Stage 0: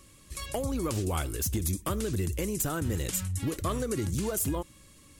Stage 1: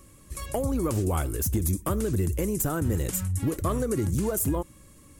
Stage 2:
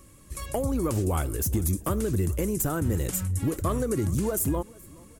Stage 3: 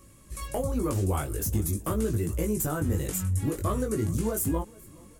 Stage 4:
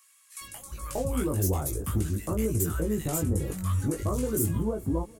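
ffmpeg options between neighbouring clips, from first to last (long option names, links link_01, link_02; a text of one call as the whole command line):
ffmpeg -i in.wav -af "equalizer=frequency=3700:width_type=o:width=1.9:gain=-10,volume=4.5dB" out.wav
ffmpeg -i in.wav -af "aecho=1:1:422|844|1266:0.0631|0.0303|0.0145" out.wav
ffmpeg -i in.wav -af "flanger=delay=18:depth=2.8:speed=0.46,volume=1.5dB" out.wav
ffmpeg -i in.wav -filter_complex "[0:a]acrossover=split=1200[link_01][link_02];[link_01]adelay=410[link_03];[link_03][link_02]amix=inputs=2:normalize=0" out.wav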